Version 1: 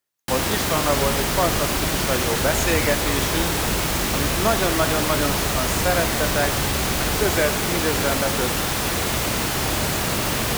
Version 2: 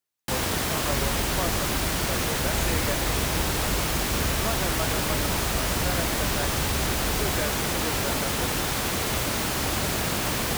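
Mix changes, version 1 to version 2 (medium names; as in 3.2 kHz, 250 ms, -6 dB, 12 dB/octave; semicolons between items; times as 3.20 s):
speech -9.5 dB; reverb: off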